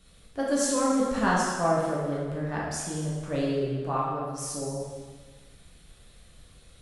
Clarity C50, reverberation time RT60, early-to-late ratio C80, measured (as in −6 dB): −0.5 dB, 1.5 s, 2.0 dB